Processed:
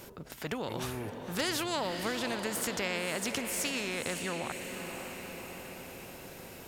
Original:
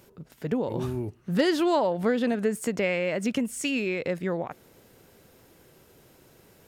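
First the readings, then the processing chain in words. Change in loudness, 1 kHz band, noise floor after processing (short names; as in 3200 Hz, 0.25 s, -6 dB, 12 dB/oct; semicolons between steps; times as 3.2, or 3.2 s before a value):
-7.5 dB, -4.5 dB, -48 dBFS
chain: diffused feedback echo 0.555 s, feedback 50%, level -13 dB; spectral compressor 2:1; gain -3 dB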